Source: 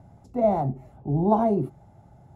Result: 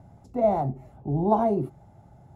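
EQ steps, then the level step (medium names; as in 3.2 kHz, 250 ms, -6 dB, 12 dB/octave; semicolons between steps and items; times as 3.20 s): dynamic bell 200 Hz, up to -3 dB, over -31 dBFS, Q 1.1; 0.0 dB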